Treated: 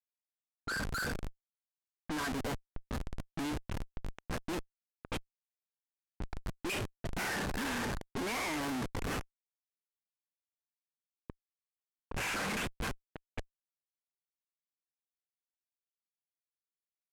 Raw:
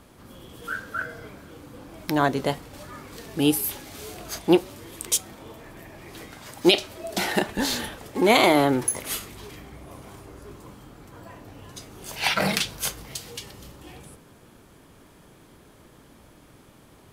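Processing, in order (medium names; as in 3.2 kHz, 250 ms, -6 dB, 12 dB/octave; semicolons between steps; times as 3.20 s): cabinet simulation 230–2800 Hz, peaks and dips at 240 Hz +4 dB, 360 Hz -7 dB, 630 Hz -7 dB, 1.1 kHz +5 dB, 1.6 kHz +8 dB, 2.5 kHz +6 dB; Schmitt trigger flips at -32.5 dBFS; level-controlled noise filter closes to 1 kHz, open at -28 dBFS; trim -5.5 dB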